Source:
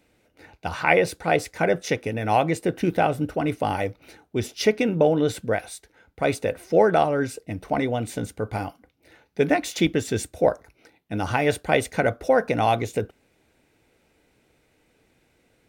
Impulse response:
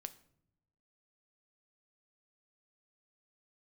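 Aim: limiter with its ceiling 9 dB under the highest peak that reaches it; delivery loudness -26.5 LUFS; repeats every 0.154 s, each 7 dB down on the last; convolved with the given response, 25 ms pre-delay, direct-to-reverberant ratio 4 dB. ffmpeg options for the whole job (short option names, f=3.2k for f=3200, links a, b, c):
-filter_complex "[0:a]alimiter=limit=-12.5dB:level=0:latency=1,aecho=1:1:154|308|462|616|770:0.447|0.201|0.0905|0.0407|0.0183,asplit=2[a][b];[1:a]atrim=start_sample=2205,adelay=25[c];[b][c]afir=irnorm=-1:irlink=0,volume=0.5dB[d];[a][d]amix=inputs=2:normalize=0,volume=-2.5dB"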